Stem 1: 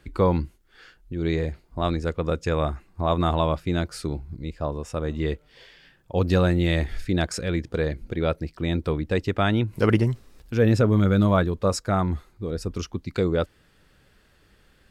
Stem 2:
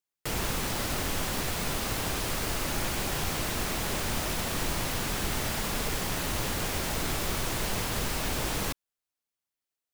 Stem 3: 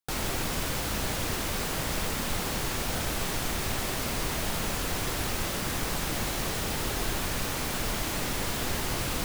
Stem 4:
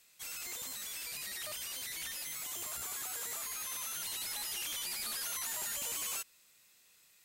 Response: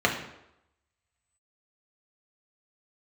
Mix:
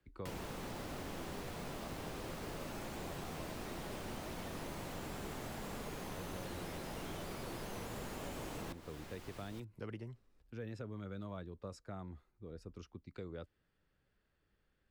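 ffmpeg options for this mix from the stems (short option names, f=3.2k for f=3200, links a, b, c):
-filter_complex "[0:a]volume=-19.5dB[a];[1:a]volume=-3dB[b];[2:a]adelay=350,volume=-19dB[c];[3:a]adelay=2400,volume=-1.5dB[d];[a][b][c][d]amix=inputs=4:normalize=0,highshelf=f=3.8k:g=-9,acrossover=split=130|420|950|2400[e][f][g][h][i];[e]acompressor=threshold=-52dB:ratio=4[j];[f]acompressor=threshold=-48dB:ratio=4[k];[g]acompressor=threshold=-51dB:ratio=4[l];[h]acompressor=threshold=-58dB:ratio=4[m];[i]acompressor=threshold=-55dB:ratio=4[n];[j][k][l][m][n]amix=inputs=5:normalize=0"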